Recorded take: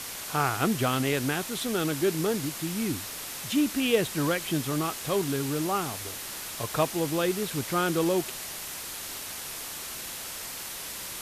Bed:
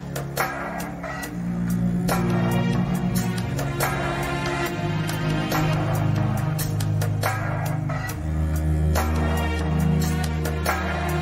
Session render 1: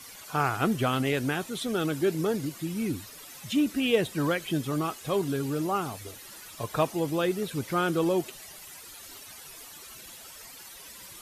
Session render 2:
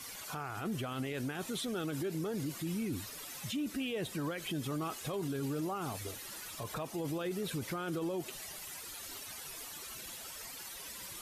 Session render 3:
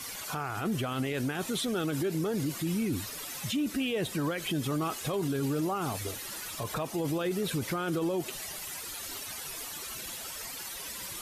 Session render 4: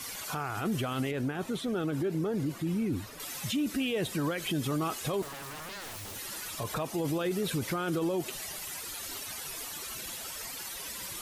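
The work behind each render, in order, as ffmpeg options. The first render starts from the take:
-af "afftdn=nr=13:nf=-38"
-af "acompressor=threshold=0.0398:ratio=6,alimiter=level_in=1.88:limit=0.0631:level=0:latency=1:release=20,volume=0.531"
-af "volume=2"
-filter_complex "[0:a]asettb=1/sr,asplit=3[s0][s1][s2];[s0]atrim=end=1.114[s3];[s1]atrim=start=1.11:end=3.2,asetpts=PTS-STARTPTS,afade=t=in:d=0.004:c=qsin,afade=t=out:st=2.086:d=0.004:c=qsin,highshelf=f=2500:g=-11[s4];[s2]atrim=start=3.196[s5];[s3][s4]acrossfade=d=0.004:c1=hsin:c2=qsin[s6];[s6][s5]acrossfade=d=0.004:c1=qsin:c2=hsin,asettb=1/sr,asplit=3[s7][s8][s9];[s7]atrim=end=5.224[s10];[s8]atrim=start=5.22:end=6.16,asetpts=PTS-STARTPTS,afade=t=in:d=0.004:c=qsin,afade=t=out:st=0.936:d=0.004:c=qsin,aeval=exprs='0.0141*(abs(mod(val(0)/0.0141+3,4)-2)-1)':c=same[s11];[s9]atrim=start=6.156[s12];[s10][s11]acrossfade=d=0.004:c1=hsin:c2=qsin[s13];[s13][s12]acrossfade=d=0.004:c1=qsin:c2=hsin"

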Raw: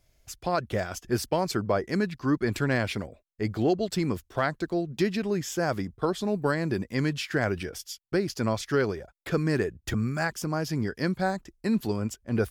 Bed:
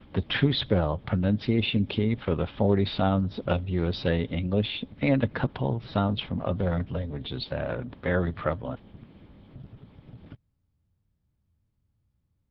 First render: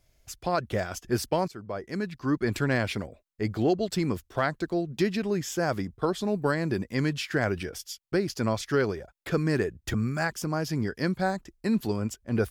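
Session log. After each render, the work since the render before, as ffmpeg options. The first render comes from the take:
-filter_complex "[0:a]asplit=2[s0][s1];[s0]atrim=end=1.48,asetpts=PTS-STARTPTS,afade=t=out:st=1.476:d=0.004:c=hsin:silence=0.133352[s2];[s1]atrim=start=1.48,asetpts=PTS-STARTPTS,afade=t=in:d=1:silence=0.133352[s3];[s2][s3]concat=n=2:v=0:a=1"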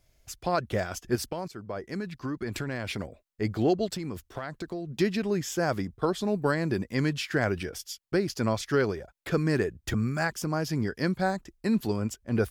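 -filter_complex "[0:a]asettb=1/sr,asplit=3[s0][s1][s2];[s0]atrim=end=1.154[s3];[s1]atrim=start=1.15:end=3,asetpts=PTS-STARTPTS,afade=t=in:d=0.004:c=qsin,afade=t=out:st=1.846:d=0.004:c=qsin,acompressor=threshold=0.0398:ratio=12:attack=3.2:release=140:knee=1:detection=peak[s4];[s2]atrim=start=2.996[s5];[s3][s4]acrossfade=d=0.004:c1=hsin:c2=qsin[s6];[s6][s5]acrossfade=d=0.004:c1=qsin:c2=hsin,asettb=1/sr,asplit=3[s7][s8][s9];[s7]atrim=end=3.884[s10];[s8]atrim=start=3.88:end=4.89,asetpts=PTS-STARTPTS,afade=t=in:d=0.004:c=qsin,afade=t=out:st=1.006:d=0.004:c=qsin,acompressor=threshold=0.0316:ratio=10:attack=3.2:release=140:knee=1:detection=peak[s11];[s9]atrim=start=4.886[s12];[s10][s11]acrossfade=d=0.004:c1=hsin:c2=qsin[s13];[s13][s12]acrossfade=d=0.004:c1=qsin:c2=hsin"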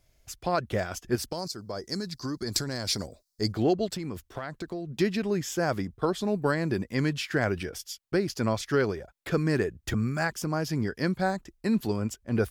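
-filter_complex "[0:a]asplit=3[s0][s1][s2];[s0]afade=t=out:st=1.3:d=0.02[s3];[s1]highshelf=f=3600:t=q:w=3:g=10,afade=t=in:st=1.3:d=0.02,afade=t=out:st=3.51:d=0.02[s4];[s2]afade=t=in:st=3.51:d=0.02[s5];[s3][s4][s5]amix=inputs=3:normalize=0"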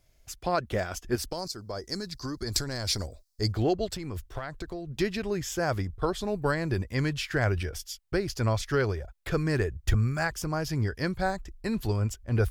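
-af "asubboost=boost=10.5:cutoff=63"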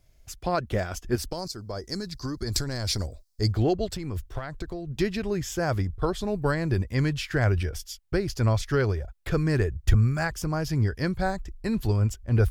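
-af "lowshelf=f=250:g=5.5"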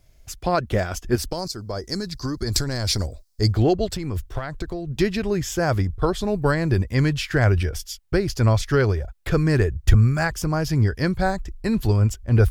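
-af "volume=1.78"

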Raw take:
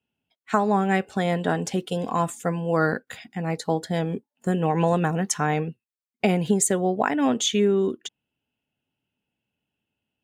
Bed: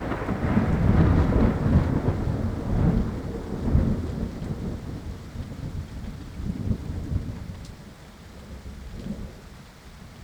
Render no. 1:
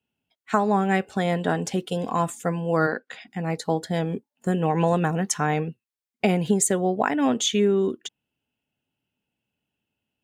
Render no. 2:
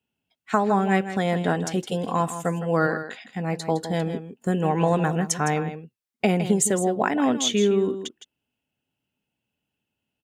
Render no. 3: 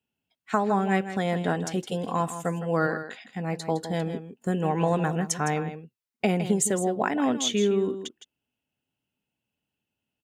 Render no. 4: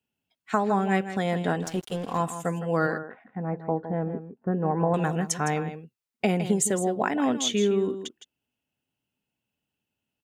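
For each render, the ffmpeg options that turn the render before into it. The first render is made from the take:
-filter_complex "[0:a]asplit=3[s0][s1][s2];[s0]afade=t=out:st=2.86:d=0.02[s3];[s1]highpass=280,lowpass=5200,afade=t=in:st=2.86:d=0.02,afade=t=out:st=3.26:d=0.02[s4];[s2]afade=t=in:st=3.26:d=0.02[s5];[s3][s4][s5]amix=inputs=3:normalize=0"
-af "aecho=1:1:161:0.282"
-af "volume=0.708"
-filter_complex "[0:a]asettb=1/sr,asplit=3[s0][s1][s2];[s0]atrim=end=1.624[s3];[s1]atrim=start=1.62:end=2.18,asetpts=PTS-STARTPTS,afade=t=in:d=0.004:c=qsin,afade=t=out:st=0.556:d=0.004:c=qsin,aeval=exprs='sgn(val(0))*max(abs(val(0))-0.0075,0)':c=same[s4];[s2]atrim=start=2.176[s5];[s3][s4]acrossfade=d=0.004:c1=hsin:c2=qsin[s6];[s6][s5]acrossfade=d=0.004:c1=qsin:c2=hsin,asettb=1/sr,asplit=3[s7][s8][s9];[s7]atrim=end=2.984[s10];[s8]atrim=start=2.98:end=4.94,asetpts=PTS-STARTPTS,afade=t=in:d=0.004:c=qsin,afade=t=out:st=1.956:d=0.004:c=qsin,lowpass=f=1500:w=0.5412,lowpass=f=1500:w=1.3066[s11];[s9]atrim=start=4.936[s12];[s10][s11]acrossfade=d=0.004:c1=hsin:c2=qsin[s13];[s13][s12]acrossfade=d=0.004:c1=qsin:c2=hsin"

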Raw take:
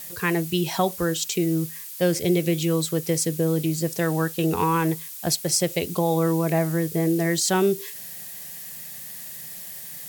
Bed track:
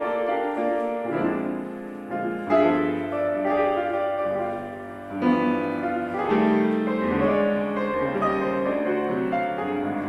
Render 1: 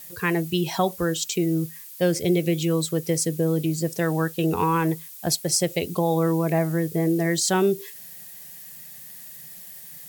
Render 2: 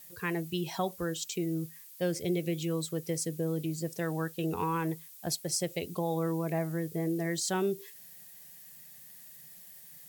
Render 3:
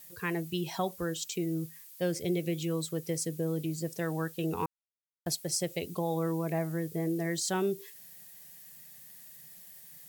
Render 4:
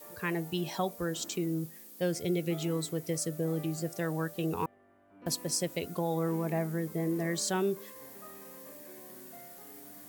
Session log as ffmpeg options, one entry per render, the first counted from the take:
-af "afftdn=nr=6:nf=-38"
-af "volume=0.335"
-filter_complex "[0:a]asplit=3[s0][s1][s2];[s0]atrim=end=4.66,asetpts=PTS-STARTPTS,afade=t=out:st=4.656:d=0.004:c=hsin[s3];[s1]atrim=start=4.66:end=5.26,asetpts=PTS-STARTPTS,volume=0[s4];[s2]atrim=start=5.26,asetpts=PTS-STARTPTS,afade=t=in:d=0.004:c=hsin[s5];[s3][s4][s5]concat=n=3:v=0:a=1"
-filter_complex "[1:a]volume=0.0422[s0];[0:a][s0]amix=inputs=2:normalize=0"

